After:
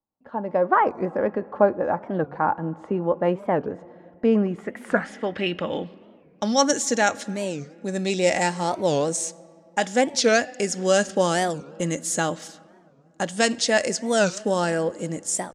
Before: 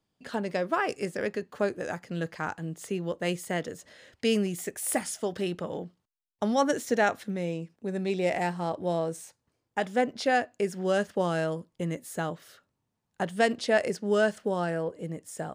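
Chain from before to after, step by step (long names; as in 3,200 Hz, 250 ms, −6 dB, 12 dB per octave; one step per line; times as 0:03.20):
noise gate −48 dBFS, range −8 dB
high-shelf EQ 4,300 Hz +9 dB
comb filter 3.6 ms, depth 31%
automatic gain control gain up to 13 dB
low-pass filter sweep 940 Hz → 7,000 Hz, 0:04.29–0:06.76
on a send at −19.5 dB: convolution reverb RT60 2.7 s, pre-delay 3 ms
on the sum: wow of a warped record 45 rpm, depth 250 cents
level −5.5 dB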